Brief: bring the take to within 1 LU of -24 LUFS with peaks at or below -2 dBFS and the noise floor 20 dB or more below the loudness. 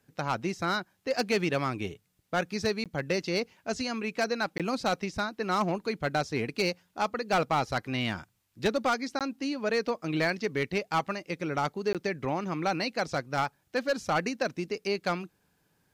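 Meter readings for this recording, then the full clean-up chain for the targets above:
clipped 0.7%; flat tops at -20.0 dBFS; dropouts 4; longest dropout 17 ms; loudness -30.5 LUFS; peak -20.0 dBFS; loudness target -24.0 LUFS
-> clip repair -20 dBFS; interpolate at 2.84/4.58/9.19/11.93, 17 ms; gain +6.5 dB

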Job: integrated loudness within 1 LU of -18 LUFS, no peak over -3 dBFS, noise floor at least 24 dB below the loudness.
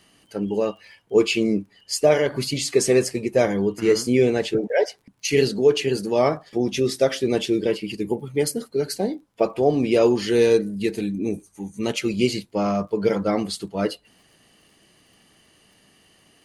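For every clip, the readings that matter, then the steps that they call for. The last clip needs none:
ticks 36/s; loudness -22.0 LUFS; peak -5.5 dBFS; loudness target -18.0 LUFS
-> de-click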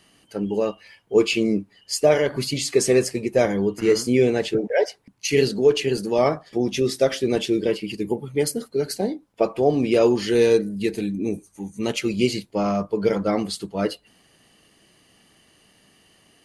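ticks 0.061/s; loudness -22.5 LUFS; peak -5.5 dBFS; loudness target -18.0 LUFS
-> gain +4.5 dB; limiter -3 dBFS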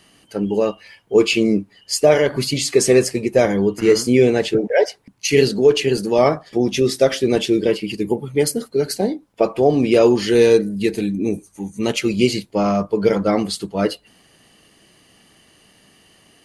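loudness -18.0 LUFS; peak -3.0 dBFS; noise floor -55 dBFS

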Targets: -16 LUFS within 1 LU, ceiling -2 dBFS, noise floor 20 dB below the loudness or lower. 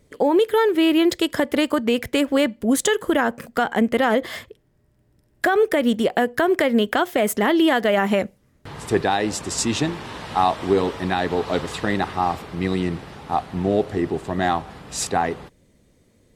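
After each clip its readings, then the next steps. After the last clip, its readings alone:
loudness -21.0 LUFS; peak -6.0 dBFS; loudness target -16.0 LUFS
-> gain +5 dB; limiter -2 dBFS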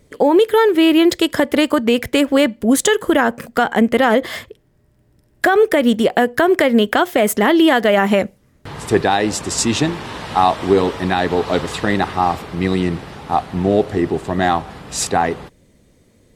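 loudness -16.0 LUFS; peak -2.0 dBFS; noise floor -56 dBFS

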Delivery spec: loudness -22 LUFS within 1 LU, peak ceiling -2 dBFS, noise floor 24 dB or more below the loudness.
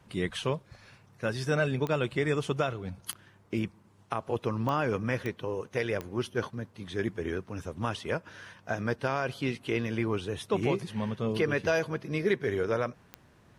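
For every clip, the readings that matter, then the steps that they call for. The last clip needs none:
clicks 6; loudness -31.5 LUFS; peak -15.0 dBFS; loudness target -22.0 LUFS
-> de-click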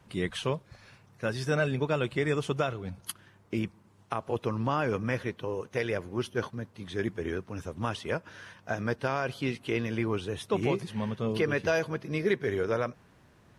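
clicks 0; loudness -31.5 LUFS; peak -15.0 dBFS; loudness target -22.0 LUFS
-> gain +9.5 dB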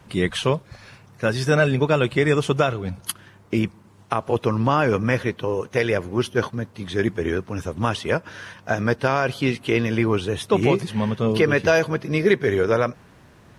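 loudness -22.0 LUFS; peak -5.5 dBFS; noise floor -51 dBFS

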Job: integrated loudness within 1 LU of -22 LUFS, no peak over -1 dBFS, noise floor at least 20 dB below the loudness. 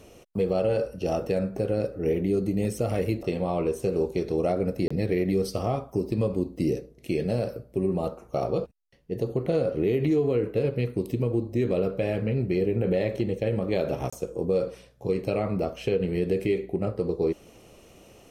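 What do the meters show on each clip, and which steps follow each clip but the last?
dropouts 2; longest dropout 25 ms; loudness -27.5 LUFS; peak -14.0 dBFS; loudness target -22.0 LUFS
-> interpolate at 4.88/14.1, 25 ms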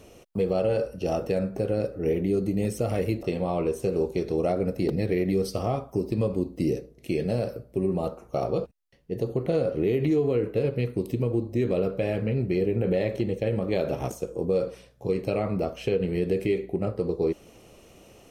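dropouts 0; loudness -27.5 LUFS; peak -13.5 dBFS; loudness target -22.0 LUFS
-> gain +5.5 dB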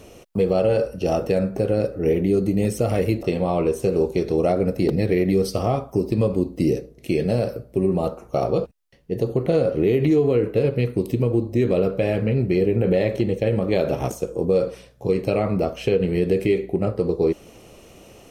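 loudness -22.0 LUFS; peak -8.0 dBFS; noise floor -48 dBFS

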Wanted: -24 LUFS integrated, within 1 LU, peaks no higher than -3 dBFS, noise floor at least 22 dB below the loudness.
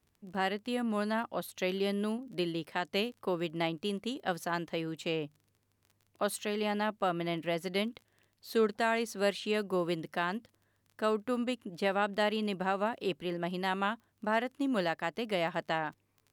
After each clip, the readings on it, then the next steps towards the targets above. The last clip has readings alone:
ticks 19/s; loudness -33.5 LUFS; peak -17.5 dBFS; loudness target -24.0 LUFS
-> de-click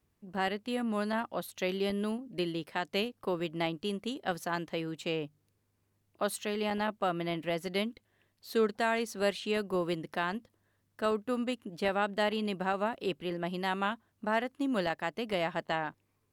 ticks 0.55/s; loudness -33.5 LUFS; peak -16.5 dBFS; loudness target -24.0 LUFS
-> gain +9.5 dB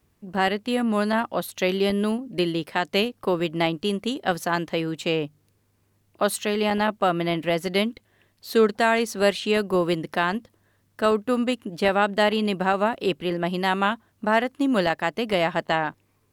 loudness -24.0 LUFS; peak -7.0 dBFS; noise floor -67 dBFS

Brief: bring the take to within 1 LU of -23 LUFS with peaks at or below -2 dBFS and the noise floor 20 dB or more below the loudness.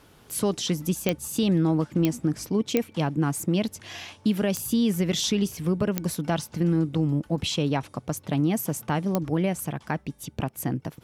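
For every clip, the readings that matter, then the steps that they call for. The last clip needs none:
clicks 6; loudness -26.5 LUFS; peak -7.5 dBFS; loudness target -23.0 LUFS
-> de-click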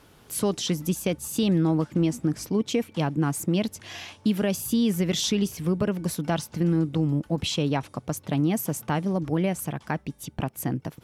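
clicks 0; loudness -26.5 LUFS; peak -12.5 dBFS; loudness target -23.0 LUFS
-> gain +3.5 dB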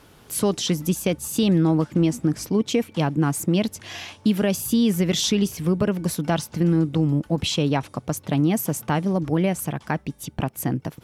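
loudness -23.0 LUFS; peak -9.0 dBFS; noise floor -52 dBFS

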